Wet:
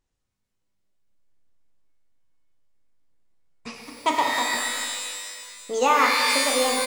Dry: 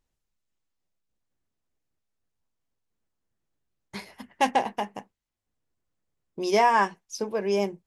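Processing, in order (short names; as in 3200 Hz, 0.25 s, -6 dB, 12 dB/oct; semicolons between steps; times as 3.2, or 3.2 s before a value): speed glide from 100% -> 129%; downsampling 22050 Hz; shimmer reverb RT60 1.9 s, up +12 st, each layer -2 dB, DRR 1.5 dB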